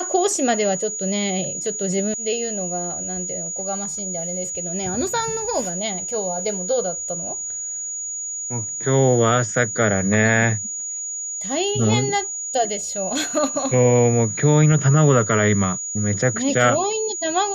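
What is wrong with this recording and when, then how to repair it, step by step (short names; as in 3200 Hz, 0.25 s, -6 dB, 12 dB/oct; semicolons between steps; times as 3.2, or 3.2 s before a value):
tone 6800 Hz -26 dBFS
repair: notch 6800 Hz, Q 30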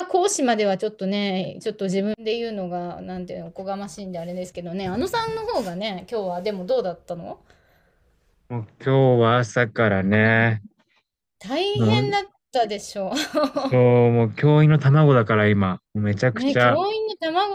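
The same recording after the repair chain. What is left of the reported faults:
none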